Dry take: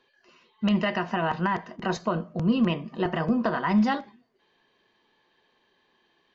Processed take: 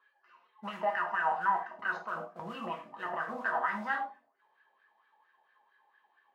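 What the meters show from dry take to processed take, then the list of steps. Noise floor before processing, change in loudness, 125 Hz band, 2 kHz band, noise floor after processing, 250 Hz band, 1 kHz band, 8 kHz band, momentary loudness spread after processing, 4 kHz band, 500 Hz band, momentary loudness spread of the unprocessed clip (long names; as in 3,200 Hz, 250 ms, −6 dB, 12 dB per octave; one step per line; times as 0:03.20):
−69 dBFS, −7.5 dB, −23.5 dB, −0.5 dB, −73 dBFS, −22.5 dB, −2.0 dB, can't be measured, 11 LU, −14.0 dB, −9.5 dB, 6 LU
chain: noise that follows the level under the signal 20 dB
in parallel at +1.5 dB: brickwall limiter −19.5 dBFS, peak gain reduction 7.5 dB
on the sum: hum removal 46.98 Hz, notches 14
LFO wah 4.4 Hz 760–1,600 Hz, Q 6.3
reverb whose tail is shaped and stops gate 130 ms falling, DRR 2 dB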